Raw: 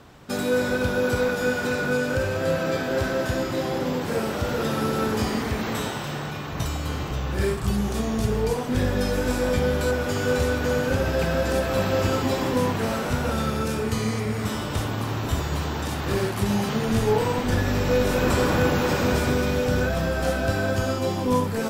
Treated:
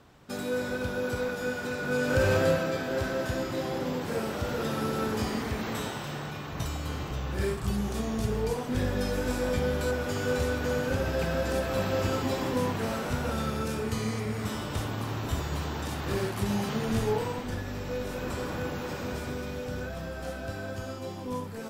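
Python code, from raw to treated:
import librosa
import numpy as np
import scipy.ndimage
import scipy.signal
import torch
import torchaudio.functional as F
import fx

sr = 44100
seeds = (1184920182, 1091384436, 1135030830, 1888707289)

y = fx.gain(x, sr, db=fx.line((1.79, -8.0), (2.33, 3.0), (2.71, -5.5), (17.01, -5.5), (17.64, -12.5)))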